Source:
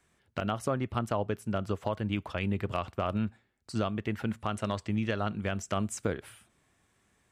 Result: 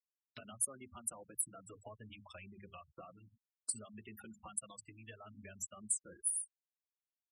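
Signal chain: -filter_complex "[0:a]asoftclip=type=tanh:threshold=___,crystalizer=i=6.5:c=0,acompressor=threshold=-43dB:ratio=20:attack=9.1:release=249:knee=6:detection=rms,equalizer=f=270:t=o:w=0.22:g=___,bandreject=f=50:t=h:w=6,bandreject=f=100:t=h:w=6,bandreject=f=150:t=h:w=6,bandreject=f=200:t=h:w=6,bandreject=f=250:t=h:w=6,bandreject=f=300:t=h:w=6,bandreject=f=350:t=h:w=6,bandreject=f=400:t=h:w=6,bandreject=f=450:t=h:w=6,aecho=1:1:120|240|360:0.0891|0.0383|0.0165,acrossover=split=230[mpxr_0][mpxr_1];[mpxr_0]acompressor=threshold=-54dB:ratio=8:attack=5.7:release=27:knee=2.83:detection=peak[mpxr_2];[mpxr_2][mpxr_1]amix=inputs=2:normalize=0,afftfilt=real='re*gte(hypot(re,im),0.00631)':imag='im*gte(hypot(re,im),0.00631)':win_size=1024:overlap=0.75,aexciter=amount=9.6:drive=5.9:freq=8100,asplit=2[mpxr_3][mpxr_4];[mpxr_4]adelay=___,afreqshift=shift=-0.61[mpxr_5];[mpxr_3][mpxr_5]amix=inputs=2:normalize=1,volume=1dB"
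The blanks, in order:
-18dB, 3, 4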